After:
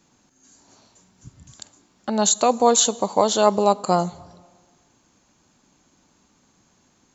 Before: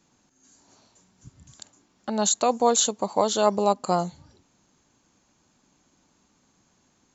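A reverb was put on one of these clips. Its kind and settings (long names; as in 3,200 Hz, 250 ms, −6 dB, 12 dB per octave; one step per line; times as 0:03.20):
dense smooth reverb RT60 1.6 s, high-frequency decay 0.8×, DRR 20 dB
level +4 dB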